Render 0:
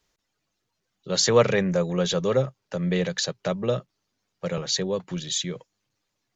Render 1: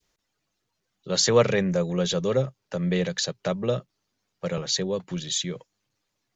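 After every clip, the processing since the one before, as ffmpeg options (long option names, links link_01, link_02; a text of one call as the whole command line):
ffmpeg -i in.wav -af "adynamicequalizer=threshold=0.0141:dfrequency=1100:dqfactor=0.72:tfrequency=1100:tqfactor=0.72:attack=5:release=100:ratio=0.375:range=2:mode=cutabove:tftype=bell" out.wav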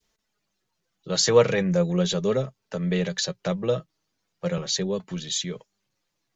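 ffmpeg -i in.wav -af "flanger=delay=4.5:depth=1.8:regen=52:speed=0.38:shape=sinusoidal,volume=4dB" out.wav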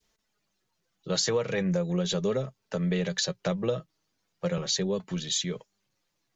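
ffmpeg -i in.wav -af "acompressor=threshold=-23dB:ratio=16" out.wav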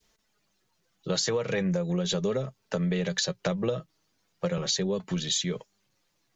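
ffmpeg -i in.wav -af "acompressor=threshold=-30dB:ratio=3,volume=4.5dB" out.wav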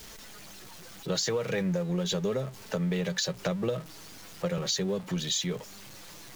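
ffmpeg -i in.wav -af "aeval=exprs='val(0)+0.5*0.0119*sgn(val(0))':channel_layout=same,volume=-2.5dB" out.wav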